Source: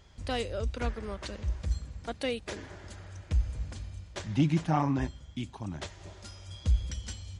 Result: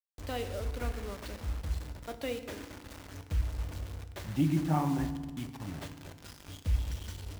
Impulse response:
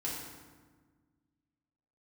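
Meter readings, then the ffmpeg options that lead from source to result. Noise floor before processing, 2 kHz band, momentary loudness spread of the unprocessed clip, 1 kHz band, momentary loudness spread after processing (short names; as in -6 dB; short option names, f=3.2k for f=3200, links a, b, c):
-52 dBFS, -3.5 dB, 17 LU, -3.0 dB, 17 LU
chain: -filter_complex "[0:a]aemphasis=mode=reproduction:type=50fm,acrusher=bits=6:mix=0:aa=0.000001,asplit=2[a][b];[1:a]atrim=start_sample=2205[c];[b][c]afir=irnorm=-1:irlink=0,volume=-8dB[d];[a][d]amix=inputs=2:normalize=0,volume=-6.5dB"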